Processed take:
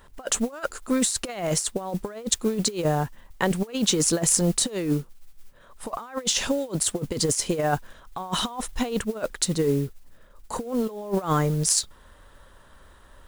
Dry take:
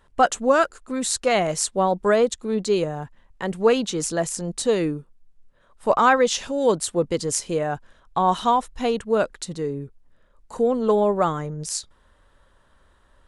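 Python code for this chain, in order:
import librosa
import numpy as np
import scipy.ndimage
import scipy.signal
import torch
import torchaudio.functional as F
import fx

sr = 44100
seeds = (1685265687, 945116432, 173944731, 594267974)

y = fx.high_shelf(x, sr, hz=10000.0, db=7.5)
y = fx.over_compress(y, sr, threshold_db=-26.0, ratio=-0.5)
y = fx.mod_noise(y, sr, seeds[0], snr_db=23)
y = y * librosa.db_to_amplitude(1.5)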